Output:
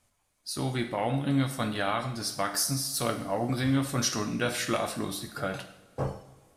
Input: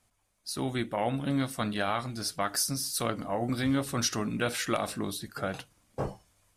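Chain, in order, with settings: wow and flutter 20 cents; two-slope reverb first 0.6 s, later 2.2 s, from -18 dB, DRR 5 dB

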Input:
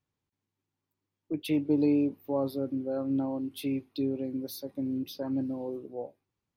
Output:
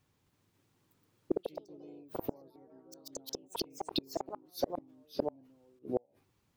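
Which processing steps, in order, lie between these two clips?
inverted gate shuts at -29 dBFS, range -40 dB; ever faster or slower copies 266 ms, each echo +3 st, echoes 3; trim +11 dB

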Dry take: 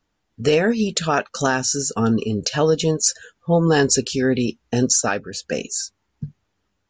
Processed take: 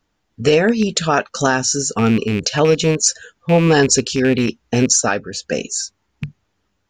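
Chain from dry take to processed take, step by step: rattle on loud lows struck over -21 dBFS, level -19 dBFS; trim +3.5 dB

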